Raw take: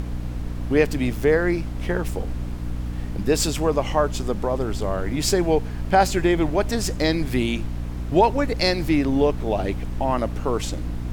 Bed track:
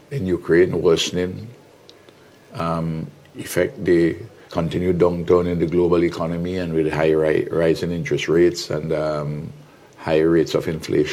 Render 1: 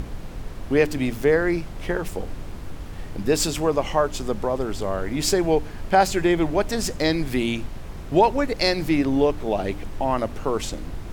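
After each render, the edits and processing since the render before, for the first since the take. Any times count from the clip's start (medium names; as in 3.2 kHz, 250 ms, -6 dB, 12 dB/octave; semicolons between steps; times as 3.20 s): de-hum 60 Hz, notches 5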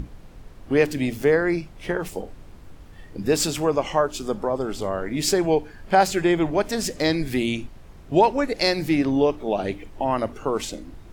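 noise print and reduce 10 dB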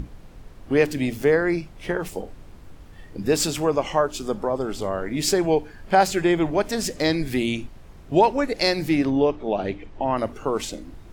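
9.10–10.17 s: distance through air 100 m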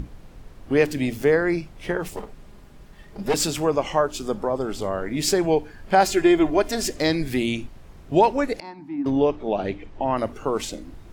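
2.16–3.34 s: comb filter that takes the minimum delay 4.9 ms; 6.04–6.97 s: comb 2.9 ms, depth 57%; 8.60–9.06 s: two resonant band-passes 490 Hz, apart 1.8 oct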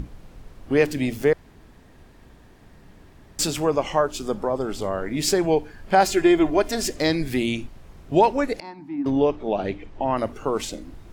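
1.33–3.39 s: room tone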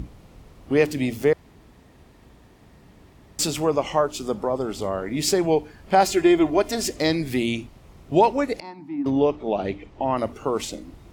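high-pass 42 Hz; peaking EQ 1.6 kHz -6 dB 0.21 oct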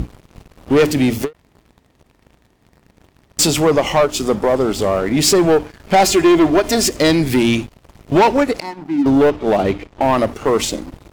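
waveshaping leveller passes 3; endings held to a fixed fall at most 390 dB/s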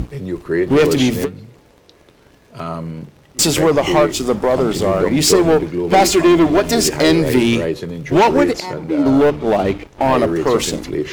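add bed track -3 dB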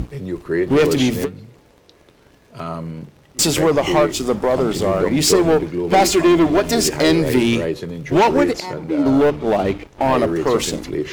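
trim -2 dB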